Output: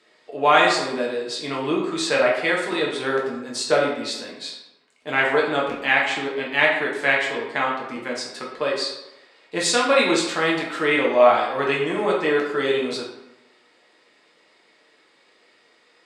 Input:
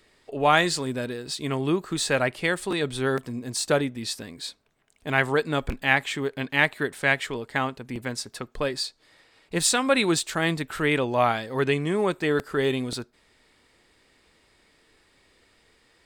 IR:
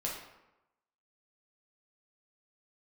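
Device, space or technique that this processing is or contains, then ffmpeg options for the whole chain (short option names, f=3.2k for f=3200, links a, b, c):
supermarket ceiling speaker: -filter_complex "[0:a]highpass=310,lowpass=6.8k[a];[1:a]atrim=start_sample=2205[b];[a][b]afir=irnorm=-1:irlink=0,volume=2dB"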